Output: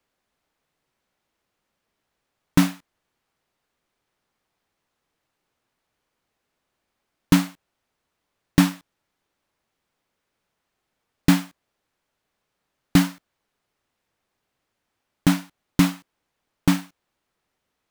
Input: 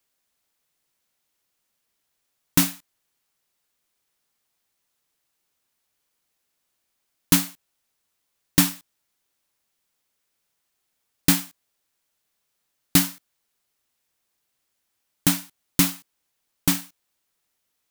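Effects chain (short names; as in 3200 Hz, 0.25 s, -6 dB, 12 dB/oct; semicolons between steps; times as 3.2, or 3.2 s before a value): LPF 1400 Hz 6 dB/oct; in parallel at +2.5 dB: limiter -14 dBFS, peak gain reduction 8 dB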